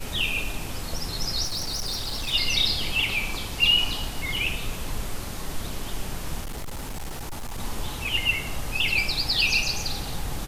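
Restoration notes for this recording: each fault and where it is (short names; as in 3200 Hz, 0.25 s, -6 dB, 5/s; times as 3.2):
1.44–2.34 clipped -25.5 dBFS
6.41–7.59 clipped -29 dBFS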